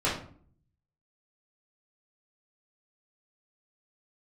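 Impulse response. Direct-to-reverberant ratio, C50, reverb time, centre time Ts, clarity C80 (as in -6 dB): -9.0 dB, 5.5 dB, 0.50 s, 34 ms, 10.0 dB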